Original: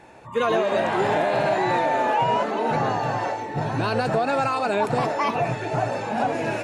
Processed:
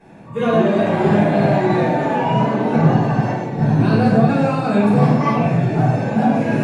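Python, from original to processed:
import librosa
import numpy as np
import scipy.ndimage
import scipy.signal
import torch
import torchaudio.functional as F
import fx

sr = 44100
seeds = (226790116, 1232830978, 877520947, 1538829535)

y = fx.peak_eq(x, sr, hz=190.0, db=14.5, octaves=1.4)
y = fx.room_shoebox(y, sr, seeds[0], volume_m3=240.0, walls='mixed', distance_m=5.2)
y = F.gain(torch.from_numpy(y), -13.0).numpy()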